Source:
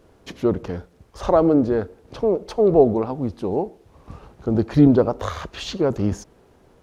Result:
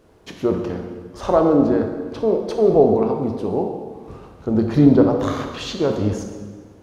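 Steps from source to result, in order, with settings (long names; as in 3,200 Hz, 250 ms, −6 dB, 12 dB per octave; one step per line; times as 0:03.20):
low-shelf EQ 61 Hz −5.5 dB
on a send: convolution reverb RT60 1.6 s, pre-delay 14 ms, DRR 3 dB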